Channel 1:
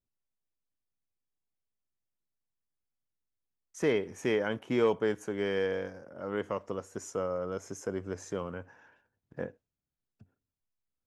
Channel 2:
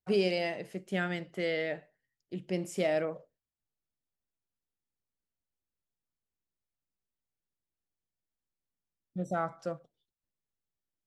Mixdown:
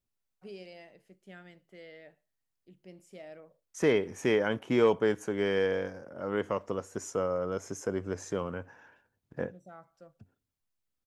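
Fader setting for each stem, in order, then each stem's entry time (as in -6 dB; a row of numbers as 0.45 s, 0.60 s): +2.5 dB, -18.0 dB; 0.00 s, 0.35 s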